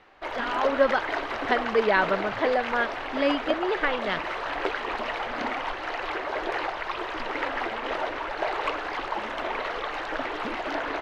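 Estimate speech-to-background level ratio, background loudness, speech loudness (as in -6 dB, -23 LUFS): 4.0 dB, -30.5 LUFS, -26.5 LUFS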